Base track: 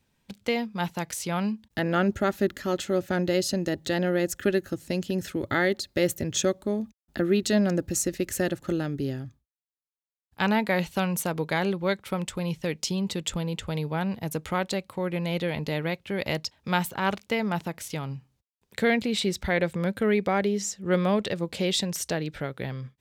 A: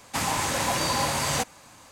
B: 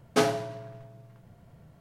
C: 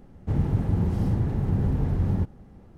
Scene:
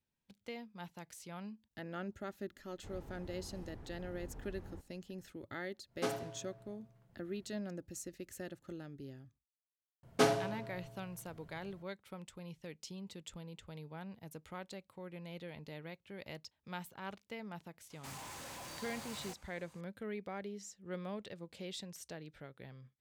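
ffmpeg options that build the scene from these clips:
-filter_complex "[2:a]asplit=2[s0][s1];[0:a]volume=0.112[s2];[3:a]equalizer=f=130:t=o:w=2.1:g=-14.5[s3];[1:a]asoftclip=type=hard:threshold=0.0282[s4];[s3]atrim=end=2.77,asetpts=PTS-STARTPTS,volume=0.141,afade=t=in:d=0.004:c=hsin,afade=t=out:st=2.766:d=0.004:c=hsin,adelay=2560[s5];[s0]atrim=end=1.8,asetpts=PTS-STARTPTS,volume=0.211,afade=t=in:d=0.1,afade=t=out:st=1.7:d=0.1,adelay=5860[s6];[s1]atrim=end=1.8,asetpts=PTS-STARTPTS,volume=0.562,afade=t=in:d=0.004:c=hsin,afade=t=out:st=1.796:d=0.004:c=hsin,adelay=10030[s7];[s4]atrim=end=1.91,asetpts=PTS-STARTPTS,volume=0.168,afade=t=in:d=0.004:c=hsin,afade=t=out:st=1.906:d=0.004:c=hsin,adelay=17900[s8];[s2][s5][s6][s7][s8]amix=inputs=5:normalize=0"

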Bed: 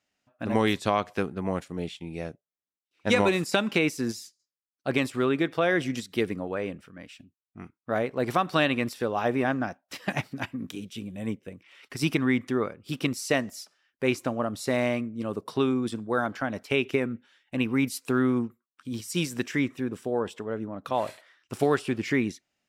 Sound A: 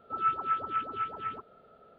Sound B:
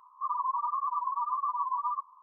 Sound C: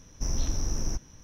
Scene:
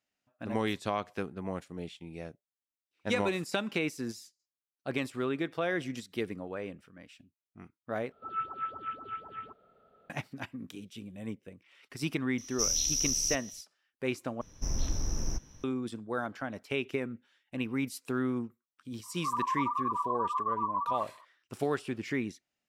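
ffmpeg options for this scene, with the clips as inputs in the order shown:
-filter_complex "[3:a]asplit=2[s0][s1];[0:a]volume=0.422[s2];[s0]aexciter=amount=12:drive=6.4:freq=2300[s3];[s2]asplit=3[s4][s5][s6];[s4]atrim=end=8.124[s7];[1:a]atrim=end=1.98,asetpts=PTS-STARTPTS,volume=0.473[s8];[s5]atrim=start=10.096:end=14.414[s9];[s1]atrim=end=1.23,asetpts=PTS-STARTPTS,volume=0.708[s10];[s6]atrim=start=15.636[s11];[s3]atrim=end=1.23,asetpts=PTS-STARTPTS,volume=0.168,afade=t=in:d=0.004:c=hsin,afade=t=out:st=1.226:d=0.004:c=hsin,adelay=12380[s12];[2:a]atrim=end=2.22,asetpts=PTS-STARTPTS,volume=0.891,afade=t=in:d=0.004:c=hsin,afade=t=out:st=2.216:d=0.004:c=hsin,adelay=19030[s13];[s7][s8]acrossfade=d=0.004:c1=hsin:c2=hsin[s14];[s14][s9]acrossfade=d=0.004:c1=hsin:c2=hsin[s15];[s15][s10]acrossfade=d=0.004:c1=hsin:c2=hsin[s16];[s16][s11]acrossfade=d=0.004:c1=hsin:c2=hsin[s17];[s17][s12][s13]amix=inputs=3:normalize=0"

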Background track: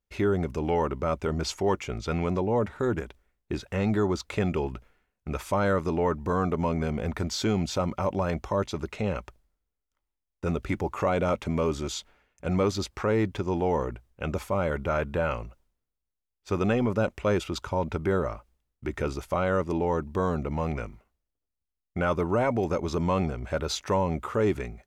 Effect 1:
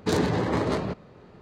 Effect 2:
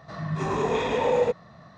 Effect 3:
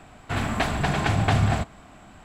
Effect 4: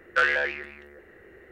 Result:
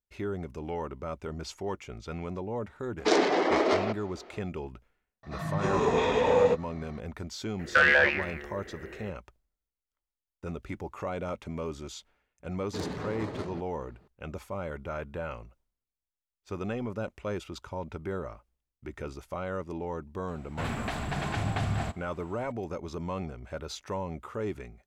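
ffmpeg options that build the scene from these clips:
-filter_complex "[1:a]asplit=2[s0][s1];[0:a]volume=0.355[s2];[s0]highpass=f=280:w=0.5412,highpass=f=280:w=1.3066,equalizer=f=360:t=q:w=4:g=5,equalizer=f=690:t=q:w=4:g=9,equalizer=f=1300:t=q:w=4:g=4,equalizer=f=2200:t=q:w=4:g=8,equalizer=f=3100:t=q:w=4:g=5,equalizer=f=5400:t=q:w=4:g=7,lowpass=f=7800:w=0.5412,lowpass=f=7800:w=1.3066[s3];[2:a]asplit=2[s4][s5];[s5]adelay=16,volume=0.266[s6];[s4][s6]amix=inputs=2:normalize=0[s7];[4:a]alimiter=level_in=5.62:limit=0.891:release=50:level=0:latency=1[s8];[3:a]alimiter=limit=0.237:level=0:latency=1:release=71[s9];[s3]atrim=end=1.41,asetpts=PTS-STARTPTS,volume=0.891,afade=t=in:d=0.004:c=hsin,afade=t=out:st=1.406:d=0.004:c=hsin,adelay=2990[s10];[s7]atrim=end=1.77,asetpts=PTS-STARTPTS,volume=0.891,afade=t=in:d=0.004:c=hsin,afade=t=out:st=1.766:d=0.004:c=hsin,adelay=5230[s11];[s8]atrim=end=1.51,asetpts=PTS-STARTPTS,volume=0.335,afade=t=in:d=0.004:c=hsin,afade=t=out:st=1.506:d=0.004:c=hsin,adelay=7590[s12];[s1]atrim=end=1.41,asetpts=PTS-STARTPTS,volume=0.251,afade=t=in:d=0.004:c=hsin,afade=t=out:st=1.406:d=0.004:c=hsin,adelay=12670[s13];[s9]atrim=end=2.24,asetpts=PTS-STARTPTS,volume=0.422,afade=t=in:d=0.004:c=hsin,afade=t=out:st=2.236:d=0.004:c=hsin,adelay=20280[s14];[s2][s10][s11][s12][s13][s14]amix=inputs=6:normalize=0"

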